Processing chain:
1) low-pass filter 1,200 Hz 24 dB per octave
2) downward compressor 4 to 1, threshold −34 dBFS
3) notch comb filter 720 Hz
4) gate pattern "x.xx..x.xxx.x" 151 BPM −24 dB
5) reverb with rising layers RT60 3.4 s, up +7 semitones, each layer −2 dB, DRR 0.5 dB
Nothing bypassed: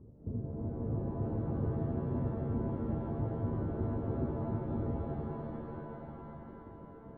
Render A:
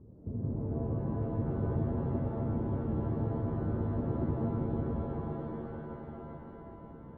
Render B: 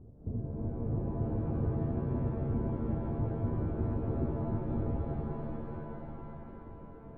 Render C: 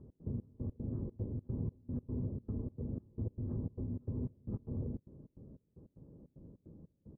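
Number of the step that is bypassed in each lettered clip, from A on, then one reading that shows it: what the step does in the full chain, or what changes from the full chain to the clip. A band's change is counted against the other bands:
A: 4, change in crest factor −2.0 dB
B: 3, change in integrated loudness +1.5 LU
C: 5, change in momentary loudness spread +5 LU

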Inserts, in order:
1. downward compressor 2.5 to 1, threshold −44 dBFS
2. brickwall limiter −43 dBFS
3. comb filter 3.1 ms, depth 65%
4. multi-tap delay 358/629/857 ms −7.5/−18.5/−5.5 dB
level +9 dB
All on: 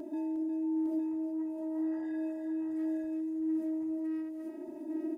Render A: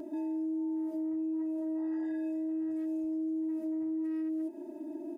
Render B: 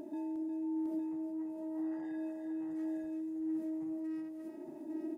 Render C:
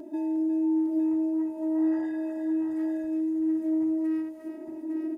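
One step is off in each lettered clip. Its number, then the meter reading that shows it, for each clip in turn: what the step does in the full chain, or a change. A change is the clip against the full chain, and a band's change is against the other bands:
4, echo-to-direct ratio −3.0 dB to none audible
3, change in integrated loudness −4.5 LU
2, average gain reduction 5.5 dB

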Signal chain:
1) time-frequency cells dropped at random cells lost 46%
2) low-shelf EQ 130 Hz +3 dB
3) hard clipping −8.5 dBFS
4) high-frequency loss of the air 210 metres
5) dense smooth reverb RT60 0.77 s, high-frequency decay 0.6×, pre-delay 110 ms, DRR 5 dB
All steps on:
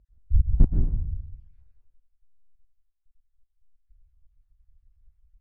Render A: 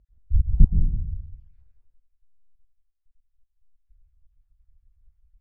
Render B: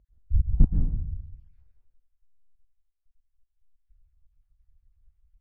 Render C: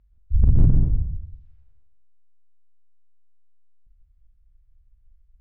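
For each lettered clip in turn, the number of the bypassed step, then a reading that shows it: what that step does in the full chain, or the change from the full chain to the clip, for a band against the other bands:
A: 3, distortion level −11 dB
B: 2, change in momentary loudness spread +1 LU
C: 1, change in crest factor −1.5 dB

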